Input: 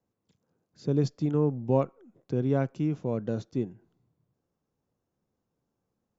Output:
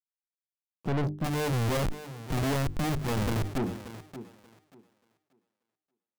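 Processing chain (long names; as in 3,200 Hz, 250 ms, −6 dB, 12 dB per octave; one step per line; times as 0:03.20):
adaptive Wiener filter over 41 samples
leveller curve on the samples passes 3
bit reduction 8 bits
high-shelf EQ 5,500 Hz −7 dB
0:01.24–0:03.58: comparator with hysteresis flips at −34.5 dBFS
low-shelf EQ 170 Hz +3.5 dB
mains-hum notches 50/100/150/200/250/300/350/400 Hz
feedback echo with a high-pass in the loop 583 ms, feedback 22%, high-pass 170 Hz, level −18.5 dB
soft clipping −26 dBFS, distortion −8 dB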